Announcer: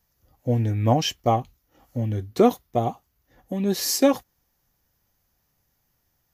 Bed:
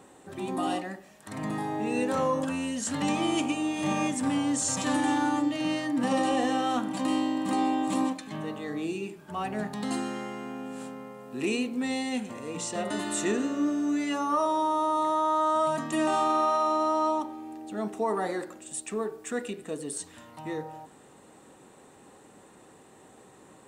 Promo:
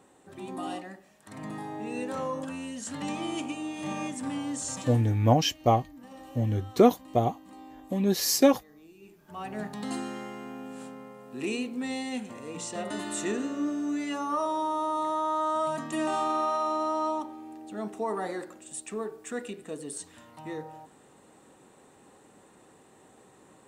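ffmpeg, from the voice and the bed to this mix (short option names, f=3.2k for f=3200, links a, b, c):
-filter_complex "[0:a]adelay=4400,volume=-1.5dB[a];[1:a]volume=12.5dB,afade=t=out:st=4.73:d=0.31:silence=0.16788,afade=t=in:st=8.97:d=0.65:silence=0.11885[b];[a][b]amix=inputs=2:normalize=0"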